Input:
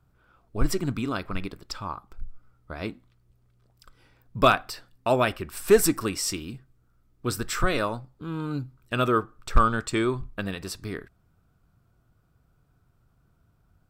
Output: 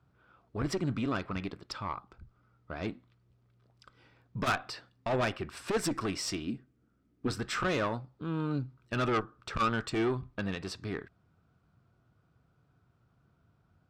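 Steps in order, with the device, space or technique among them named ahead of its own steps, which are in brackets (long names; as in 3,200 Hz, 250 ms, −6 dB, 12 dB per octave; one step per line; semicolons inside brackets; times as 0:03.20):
valve radio (band-pass filter 86–4,800 Hz; tube saturation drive 23 dB, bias 0.35; saturating transformer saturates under 160 Hz)
0:06.47–0:07.28: octave-band graphic EQ 125/250/1,000/4,000 Hz −6/+9/−6/−4 dB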